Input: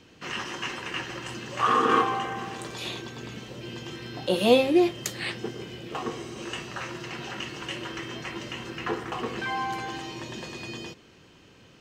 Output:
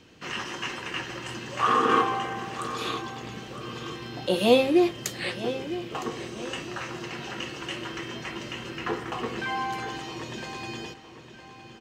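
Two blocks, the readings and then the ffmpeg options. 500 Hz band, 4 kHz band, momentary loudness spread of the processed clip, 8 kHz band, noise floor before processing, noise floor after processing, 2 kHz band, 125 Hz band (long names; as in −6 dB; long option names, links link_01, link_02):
+0.5 dB, 0.0 dB, 15 LU, 0.0 dB, −55 dBFS, −48 dBFS, +0.5 dB, 0.0 dB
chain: -filter_complex "[0:a]asplit=2[link_01][link_02];[link_02]adelay=961,lowpass=frequency=4900:poles=1,volume=-12dB,asplit=2[link_03][link_04];[link_04]adelay=961,lowpass=frequency=4900:poles=1,volume=0.36,asplit=2[link_05][link_06];[link_06]adelay=961,lowpass=frequency=4900:poles=1,volume=0.36,asplit=2[link_07][link_08];[link_08]adelay=961,lowpass=frequency=4900:poles=1,volume=0.36[link_09];[link_01][link_03][link_05][link_07][link_09]amix=inputs=5:normalize=0"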